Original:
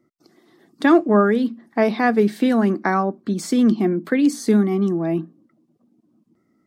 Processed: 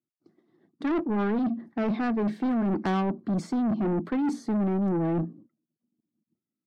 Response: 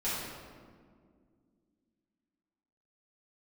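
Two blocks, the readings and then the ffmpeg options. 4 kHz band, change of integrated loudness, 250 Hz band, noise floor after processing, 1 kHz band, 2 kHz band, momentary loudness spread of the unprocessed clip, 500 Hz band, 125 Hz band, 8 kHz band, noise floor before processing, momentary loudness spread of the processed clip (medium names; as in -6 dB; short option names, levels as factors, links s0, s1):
-11.5 dB, -8.5 dB, -7.5 dB, under -85 dBFS, -9.5 dB, -13.0 dB, 7 LU, -11.5 dB, -4.5 dB, under -15 dB, -66 dBFS, 4 LU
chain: -af "agate=range=0.0224:threshold=0.00631:ratio=3:detection=peak,highpass=130,aemphasis=mode=reproduction:type=riaa,areverse,acompressor=threshold=0.126:ratio=5,areverse,asoftclip=type=tanh:threshold=0.0708"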